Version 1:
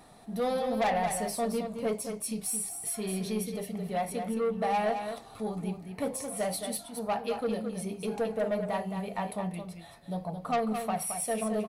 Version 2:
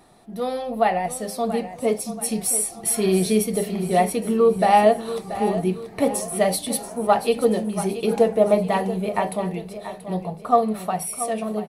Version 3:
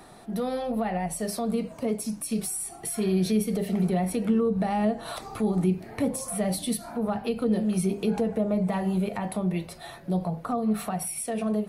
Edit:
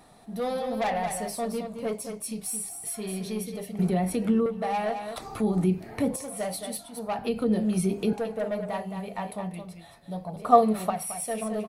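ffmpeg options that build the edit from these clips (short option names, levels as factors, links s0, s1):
-filter_complex "[2:a]asplit=3[s0][s1][s2];[0:a]asplit=5[s3][s4][s5][s6][s7];[s3]atrim=end=3.792[s8];[s0]atrim=start=3.788:end=4.462[s9];[s4]atrim=start=4.458:end=5.162[s10];[s1]atrim=start=5.158:end=6.162[s11];[s5]atrim=start=6.158:end=7.192[s12];[s2]atrim=start=7.188:end=8.132[s13];[s6]atrim=start=8.128:end=10.362[s14];[1:a]atrim=start=10.358:end=10.902[s15];[s7]atrim=start=10.898[s16];[s8][s9]acrossfade=d=0.004:c1=hsin:c2=hsin[s17];[s17][s10]acrossfade=d=0.004:c1=hsin:c2=hsin[s18];[s18][s11]acrossfade=d=0.004:c1=hsin:c2=hsin[s19];[s19][s12]acrossfade=d=0.004:c1=hsin:c2=hsin[s20];[s20][s13]acrossfade=d=0.004:c1=hsin:c2=hsin[s21];[s21][s14]acrossfade=d=0.004:c1=hsin:c2=hsin[s22];[s22][s15]acrossfade=d=0.004:c1=hsin:c2=hsin[s23];[s23][s16]acrossfade=d=0.004:c1=hsin:c2=hsin"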